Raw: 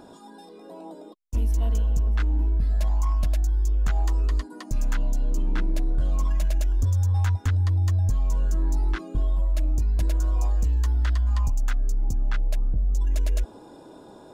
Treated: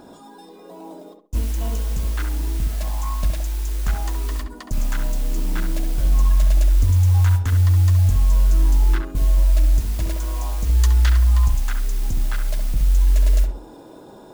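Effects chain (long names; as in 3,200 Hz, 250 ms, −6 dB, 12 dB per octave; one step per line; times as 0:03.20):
0:10.75–0:11.15: high-shelf EQ 2,000 Hz +11.5 dB
noise that follows the level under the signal 22 dB
feedback echo with a low-pass in the loop 67 ms, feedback 31%, low-pass 1,700 Hz, level −4.5 dB
level +2.5 dB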